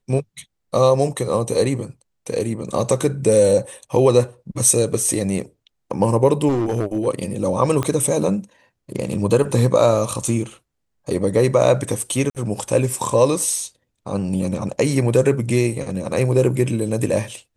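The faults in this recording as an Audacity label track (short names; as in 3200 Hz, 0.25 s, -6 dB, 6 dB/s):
6.480000	7.070000	clipped -15.5 dBFS
7.830000	7.830000	pop -9 dBFS
12.300000	12.350000	gap 48 ms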